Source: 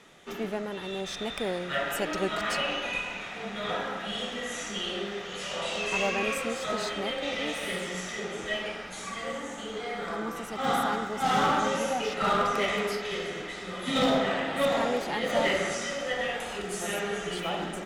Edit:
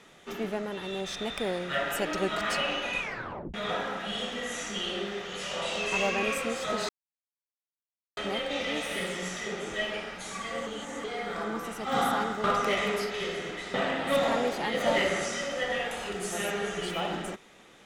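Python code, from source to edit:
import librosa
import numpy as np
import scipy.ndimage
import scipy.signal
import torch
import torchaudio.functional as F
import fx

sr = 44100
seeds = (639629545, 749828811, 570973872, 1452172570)

y = fx.edit(x, sr, fx.tape_stop(start_s=3.0, length_s=0.54),
    fx.insert_silence(at_s=6.89, length_s=1.28),
    fx.reverse_span(start_s=9.39, length_s=0.37),
    fx.cut(start_s=11.16, length_s=1.19),
    fx.cut(start_s=13.65, length_s=0.58), tone=tone)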